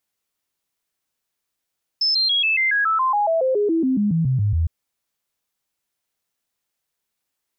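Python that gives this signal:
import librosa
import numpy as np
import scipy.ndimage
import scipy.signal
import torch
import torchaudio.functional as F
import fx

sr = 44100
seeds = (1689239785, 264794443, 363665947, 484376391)

y = fx.stepped_sweep(sr, from_hz=5250.0, direction='down', per_octave=3, tones=19, dwell_s=0.14, gap_s=0.0, level_db=-16.0)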